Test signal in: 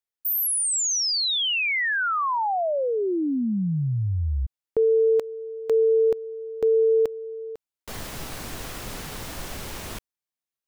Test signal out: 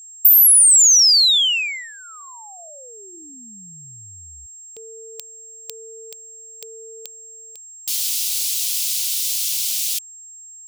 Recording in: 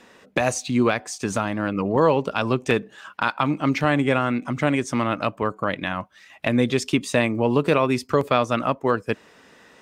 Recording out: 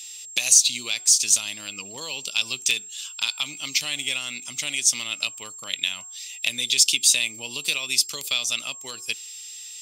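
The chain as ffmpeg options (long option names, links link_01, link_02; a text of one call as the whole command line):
ffmpeg -i in.wav -af "tiltshelf=frequency=1400:gain=-7,bandreject=frequency=367.5:width_type=h:width=4,bandreject=frequency=735:width_type=h:width=4,bandreject=frequency=1102.5:width_type=h:width=4,bandreject=frequency=1470:width_type=h:width=4,acompressor=threshold=-26dB:ratio=2.5:attack=42:release=170:knee=6:detection=peak,aeval=exprs='val(0)+0.00282*sin(2*PI*7500*n/s)':channel_layout=same,aexciter=amount=15.5:drive=6.2:freq=2500,volume=-15dB" out.wav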